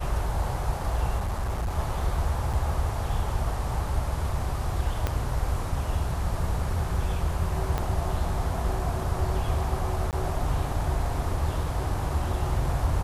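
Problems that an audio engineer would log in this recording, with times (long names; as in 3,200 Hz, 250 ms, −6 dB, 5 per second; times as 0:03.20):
0:01.18–0:01.79: clipping −24.5 dBFS
0:02.53–0:02.54: drop-out 6 ms
0:05.07: click −12 dBFS
0:07.78: click −14 dBFS
0:10.11–0:10.13: drop-out 18 ms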